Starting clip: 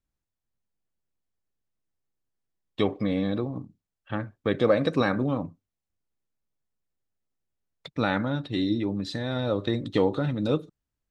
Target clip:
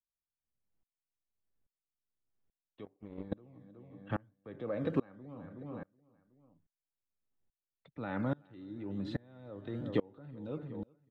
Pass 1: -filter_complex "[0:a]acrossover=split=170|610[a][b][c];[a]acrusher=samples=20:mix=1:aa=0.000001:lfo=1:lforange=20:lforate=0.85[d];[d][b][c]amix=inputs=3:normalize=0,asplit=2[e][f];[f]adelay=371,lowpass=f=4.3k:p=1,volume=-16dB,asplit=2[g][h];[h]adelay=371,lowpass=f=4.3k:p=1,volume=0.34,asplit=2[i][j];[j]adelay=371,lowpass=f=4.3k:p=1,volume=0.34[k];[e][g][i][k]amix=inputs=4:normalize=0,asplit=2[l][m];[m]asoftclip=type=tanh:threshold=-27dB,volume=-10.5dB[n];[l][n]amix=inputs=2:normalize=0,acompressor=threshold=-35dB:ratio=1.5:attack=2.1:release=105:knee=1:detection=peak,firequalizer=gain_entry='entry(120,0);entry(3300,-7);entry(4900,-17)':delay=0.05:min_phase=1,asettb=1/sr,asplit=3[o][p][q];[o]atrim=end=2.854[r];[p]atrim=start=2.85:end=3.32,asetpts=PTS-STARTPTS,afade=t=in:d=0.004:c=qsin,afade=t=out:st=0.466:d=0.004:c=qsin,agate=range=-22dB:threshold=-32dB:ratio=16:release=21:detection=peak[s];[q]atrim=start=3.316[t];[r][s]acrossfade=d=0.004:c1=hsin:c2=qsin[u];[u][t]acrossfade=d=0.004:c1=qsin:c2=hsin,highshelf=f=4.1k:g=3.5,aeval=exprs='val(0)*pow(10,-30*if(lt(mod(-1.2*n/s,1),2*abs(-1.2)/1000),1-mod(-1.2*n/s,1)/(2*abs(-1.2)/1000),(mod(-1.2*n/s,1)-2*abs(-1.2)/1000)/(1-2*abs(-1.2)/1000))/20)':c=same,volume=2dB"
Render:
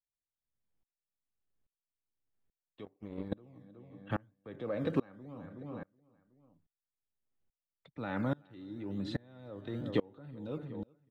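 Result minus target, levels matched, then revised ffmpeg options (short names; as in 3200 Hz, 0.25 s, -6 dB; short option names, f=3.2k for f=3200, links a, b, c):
4000 Hz band +4.0 dB; soft clip: distortion -5 dB
-filter_complex "[0:a]acrossover=split=170|610[a][b][c];[a]acrusher=samples=20:mix=1:aa=0.000001:lfo=1:lforange=20:lforate=0.85[d];[d][b][c]amix=inputs=3:normalize=0,asplit=2[e][f];[f]adelay=371,lowpass=f=4.3k:p=1,volume=-16dB,asplit=2[g][h];[h]adelay=371,lowpass=f=4.3k:p=1,volume=0.34,asplit=2[i][j];[j]adelay=371,lowpass=f=4.3k:p=1,volume=0.34[k];[e][g][i][k]amix=inputs=4:normalize=0,asplit=2[l][m];[m]asoftclip=type=tanh:threshold=-38.5dB,volume=-10.5dB[n];[l][n]amix=inputs=2:normalize=0,acompressor=threshold=-35dB:ratio=1.5:attack=2.1:release=105:knee=1:detection=peak,firequalizer=gain_entry='entry(120,0);entry(3300,-7);entry(4900,-17)':delay=0.05:min_phase=1,asettb=1/sr,asplit=3[o][p][q];[o]atrim=end=2.854[r];[p]atrim=start=2.85:end=3.32,asetpts=PTS-STARTPTS,afade=t=in:d=0.004:c=qsin,afade=t=out:st=0.466:d=0.004:c=qsin,agate=range=-22dB:threshold=-32dB:ratio=16:release=21:detection=peak[s];[q]atrim=start=3.316[t];[r][s]acrossfade=d=0.004:c1=hsin:c2=qsin[u];[u][t]acrossfade=d=0.004:c1=qsin:c2=hsin,highshelf=f=4.1k:g=-5.5,aeval=exprs='val(0)*pow(10,-30*if(lt(mod(-1.2*n/s,1),2*abs(-1.2)/1000),1-mod(-1.2*n/s,1)/(2*abs(-1.2)/1000),(mod(-1.2*n/s,1)-2*abs(-1.2)/1000)/(1-2*abs(-1.2)/1000))/20)':c=same,volume=2dB"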